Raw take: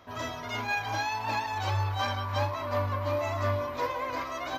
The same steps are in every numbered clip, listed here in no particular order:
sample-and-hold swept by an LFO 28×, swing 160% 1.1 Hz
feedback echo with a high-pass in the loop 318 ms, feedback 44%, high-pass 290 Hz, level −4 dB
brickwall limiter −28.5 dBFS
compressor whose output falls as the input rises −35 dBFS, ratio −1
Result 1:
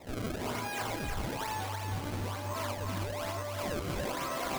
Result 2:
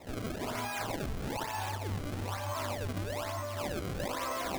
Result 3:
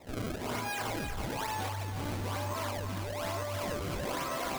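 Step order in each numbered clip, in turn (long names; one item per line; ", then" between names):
compressor whose output falls as the input rises, then sample-and-hold swept by an LFO, then brickwall limiter, then feedback echo with a high-pass in the loop
compressor whose output falls as the input rises, then brickwall limiter, then feedback echo with a high-pass in the loop, then sample-and-hold swept by an LFO
sample-and-hold swept by an LFO, then brickwall limiter, then feedback echo with a high-pass in the loop, then compressor whose output falls as the input rises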